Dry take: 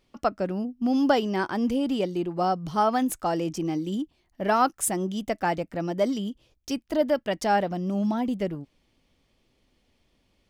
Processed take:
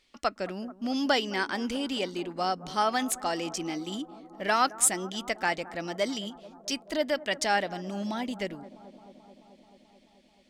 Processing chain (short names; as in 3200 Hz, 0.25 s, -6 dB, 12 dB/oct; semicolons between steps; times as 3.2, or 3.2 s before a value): ten-band EQ 125 Hz -9 dB, 2000 Hz +9 dB, 4000 Hz +9 dB, 8000 Hz +10 dB; analogue delay 0.217 s, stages 2048, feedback 78%, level -18 dB; gain -5.5 dB